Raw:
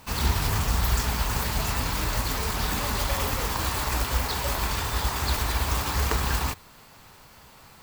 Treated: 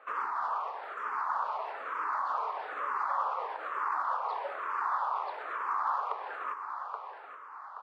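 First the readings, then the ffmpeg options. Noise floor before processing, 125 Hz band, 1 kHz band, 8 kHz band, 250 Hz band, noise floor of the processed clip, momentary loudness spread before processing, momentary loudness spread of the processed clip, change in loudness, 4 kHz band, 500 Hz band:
−51 dBFS, below −40 dB, +1.0 dB, below −35 dB, below −25 dB, −47 dBFS, 2 LU, 8 LU, −7.5 dB, below −25 dB, −8.0 dB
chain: -filter_complex "[0:a]lowpass=frequency=1200:width_type=q:width=3.8,aecho=1:1:826|1652|2478:0.2|0.0718|0.0259,acompressor=threshold=-25dB:ratio=6,highpass=frequency=500:width=0.5412,highpass=frequency=500:width=1.3066,asplit=2[link_01][link_02];[link_02]afreqshift=-1.1[link_03];[link_01][link_03]amix=inputs=2:normalize=1"

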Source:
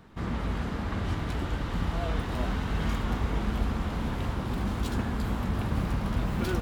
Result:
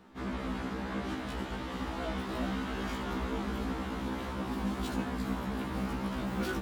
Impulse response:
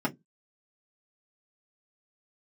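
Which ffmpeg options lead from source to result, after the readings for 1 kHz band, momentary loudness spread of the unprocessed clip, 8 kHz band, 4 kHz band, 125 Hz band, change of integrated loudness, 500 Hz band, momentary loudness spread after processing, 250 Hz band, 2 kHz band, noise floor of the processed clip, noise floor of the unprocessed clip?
−2.0 dB, 2 LU, −2.5 dB, −2.5 dB, −10.0 dB, −4.5 dB, −2.0 dB, 3 LU, −2.0 dB, −2.0 dB, −39 dBFS, −34 dBFS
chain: -af "lowshelf=frequency=170:width_type=q:width=1.5:gain=-8,afftfilt=real='re*1.73*eq(mod(b,3),0)':imag='im*1.73*eq(mod(b,3),0)':win_size=2048:overlap=0.75"

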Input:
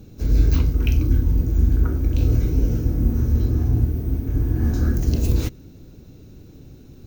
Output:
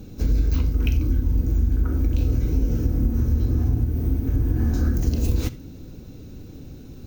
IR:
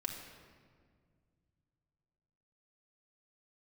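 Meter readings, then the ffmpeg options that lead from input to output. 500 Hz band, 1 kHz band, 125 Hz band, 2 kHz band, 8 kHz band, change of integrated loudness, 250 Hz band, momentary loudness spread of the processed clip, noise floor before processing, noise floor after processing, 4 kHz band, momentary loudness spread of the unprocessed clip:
−2.5 dB, −2.0 dB, −2.5 dB, −2.0 dB, −1.5 dB, −2.0 dB, −1.0 dB, 19 LU, −45 dBFS, −41 dBFS, −2.0 dB, 4 LU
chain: -filter_complex "[0:a]acompressor=threshold=-21dB:ratio=6,asplit=2[link_01][link_02];[1:a]atrim=start_sample=2205,atrim=end_sample=3969[link_03];[link_02][link_03]afir=irnorm=-1:irlink=0,volume=-4dB[link_04];[link_01][link_04]amix=inputs=2:normalize=0"

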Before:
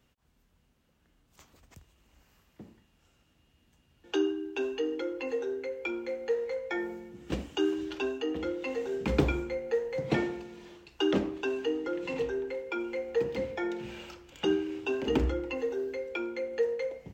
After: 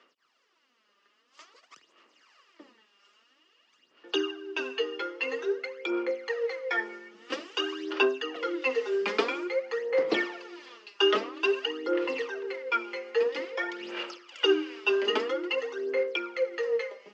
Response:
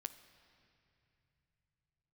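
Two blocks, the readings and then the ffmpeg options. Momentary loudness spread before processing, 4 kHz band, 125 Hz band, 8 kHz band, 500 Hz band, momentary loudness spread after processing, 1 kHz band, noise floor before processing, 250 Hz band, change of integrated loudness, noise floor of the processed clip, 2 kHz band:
7 LU, +9.5 dB, below −20 dB, can't be measured, +2.5 dB, 9 LU, +6.0 dB, −69 dBFS, −3.0 dB, +3.0 dB, −70 dBFS, +8.0 dB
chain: -af "aphaser=in_gain=1:out_gain=1:delay=5:decay=0.68:speed=0.5:type=sinusoidal,highpass=frequency=350:width=0.5412,highpass=frequency=350:width=1.3066,equalizer=frequency=780:width_type=q:width=4:gain=-4,equalizer=frequency=1200:width_type=q:width=4:gain=10,equalizer=frequency=1900:width_type=q:width=4:gain=6,equalizer=frequency=2900:width_type=q:width=4:gain=6,equalizer=frequency=4900:width_type=q:width=4:gain=8,lowpass=frequency=6500:width=0.5412,lowpass=frequency=6500:width=1.3066"

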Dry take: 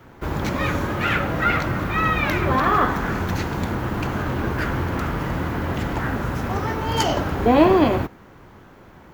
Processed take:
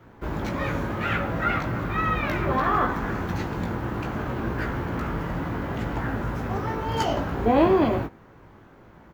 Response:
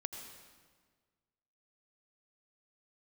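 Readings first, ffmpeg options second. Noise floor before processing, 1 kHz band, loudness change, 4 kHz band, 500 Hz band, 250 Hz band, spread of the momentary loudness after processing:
−47 dBFS, −4.0 dB, −4.0 dB, −7.5 dB, −3.5 dB, −4.0 dB, 8 LU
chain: -filter_complex "[0:a]highshelf=frequency=2900:gain=-7,asplit=2[link_01][link_02];[link_02]adelay=18,volume=-5.5dB[link_03];[link_01][link_03]amix=inputs=2:normalize=0,volume=-4.5dB"

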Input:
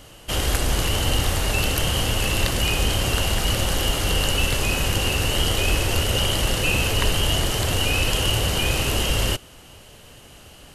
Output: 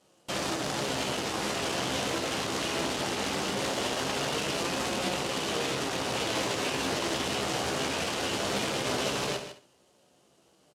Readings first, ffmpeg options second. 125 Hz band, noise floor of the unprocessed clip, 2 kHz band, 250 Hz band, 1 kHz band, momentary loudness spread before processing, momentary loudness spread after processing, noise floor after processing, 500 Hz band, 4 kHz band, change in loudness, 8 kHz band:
−16.5 dB, −46 dBFS, −7.5 dB, −4.0 dB, −3.0 dB, 2 LU, 2 LU, −65 dBFS, −3.5 dB, −9.5 dB, −8.5 dB, −8.5 dB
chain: -filter_complex "[0:a]acrossover=split=5400[link_01][link_02];[link_02]acompressor=threshold=-40dB:ratio=4:attack=1:release=60[link_03];[link_01][link_03]amix=inputs=2:normalize=0,equalizer=frequency=2200:width_type=o:width=1.8:gain=-14.5,bandreject=frequency=60:width_type=h:width=6,bandreject=frequency=120:width_type=h:width=6,bandreject=frequency=180:width_type=h:width=6,bandreject=frequency=240:width_type=h:width=6,bandreject=frequency=300:width_type=h:width=6,bandreject=frequency=360:width_type=h:width=6,bandreject=frequency=420:width_type=h:width=6,bandreject=frequency=480:width_type=h:width=6,alimiter=limit=-19.5dB:level=0:latency=1:release=131,aeval=exprs='0.106*(cos(1*acos(clip(val(0)/0.106,-1,1)))-cos(1*PI/2))+0.0168*(cos(7*acos(clip(val(0)/0.106,-1,1)))-cos(7*PI/2))':channel_layout=same,aeval=exprs='0.126*sin(PI/2*2.82*val(0)/0.126)':channel_layout=same,flanger=delay=5.5:depth=6.8:regen=71:speed=0.2:shape=sinusoidal,asplit=2[link_04][link_05];[link_05]adelay=15,volume=-7dB[link_06];[link_04][link_06]amix=inputs=2:normalize=0,asplit=2[link_07][link_08];[link_08]aecho=0:1:68|136|204:0.282|0.0789|0.0221[link_09];[link_07][link_09]amix=inputs=2:normalize=0,acrusher=bits=2:mode=log:mix=0:aa=0.000001,highpass=210,lowpass=7000,asplit=2[link_10][link_11];[link_11]aecho=0:1:153:0.282[link_12];[link_10][link_12]amix=inputs=2:normalize=0"

